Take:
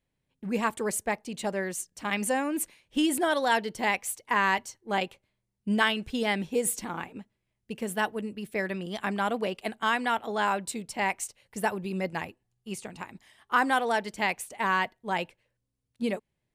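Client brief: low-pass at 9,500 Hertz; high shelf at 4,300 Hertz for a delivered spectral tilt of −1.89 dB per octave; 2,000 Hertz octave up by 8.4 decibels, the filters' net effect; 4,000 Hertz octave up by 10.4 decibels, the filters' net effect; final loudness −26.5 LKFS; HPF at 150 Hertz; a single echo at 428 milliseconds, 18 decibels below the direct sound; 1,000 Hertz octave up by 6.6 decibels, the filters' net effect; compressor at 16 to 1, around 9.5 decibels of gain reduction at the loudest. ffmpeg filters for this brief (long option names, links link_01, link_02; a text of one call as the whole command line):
ffmpeg -i in.wav -af "highpass=150,lowpass=9500,equalizer=frequency=1000:width_type=o:gain=6,equalizer=frequency=2000:width_type=o:gain=5.5,equalizer=frequency=4000:width_type=o:gain=8.5,highshelf=frequency=4300:gain=6.5,acompressor=threshold=-21dB:ratio=16,aecho=1:1:428:0.126,volume=1.5dB" out.wav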